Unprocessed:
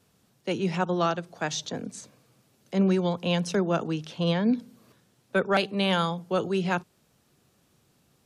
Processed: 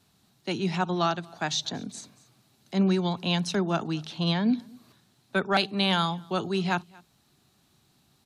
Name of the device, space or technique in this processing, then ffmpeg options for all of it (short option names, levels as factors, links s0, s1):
ducked delay: -filter_complex "[0:a]equalizer=f=500:t=o:w=0.33:g=-12,equalizer=f=800:t=o:w=0.33:g=3,equalizer=f=4000:t=o:w=0.33:g=8,asplit=3[s0][s1][s2];[s1]adelay=232,volume=0.355[s3];[s2]apad=whole_len=374446[s4];[s3][s4]sidechaincompress=threshold=0.01:ratio=10:attack=25:release=1370[s5];[s0][s5]amix=inputs=2:normalize=0"